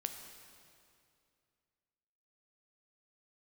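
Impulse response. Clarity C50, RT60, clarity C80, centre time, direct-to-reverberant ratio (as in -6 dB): 6.5 dB, 2.4 s, 7.5 dB, 42 ms, 5.5 dB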